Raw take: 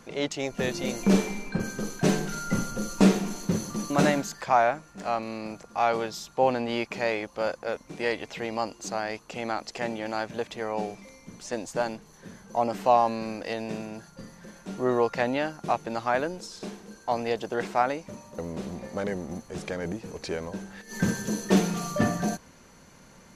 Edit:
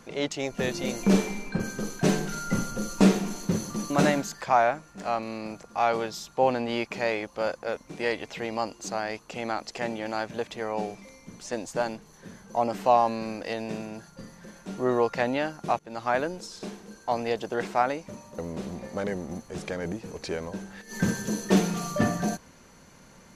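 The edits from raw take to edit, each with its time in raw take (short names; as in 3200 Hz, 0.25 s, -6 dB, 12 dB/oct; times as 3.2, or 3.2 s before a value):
15.79–16.1 fade in, from -21.5 dB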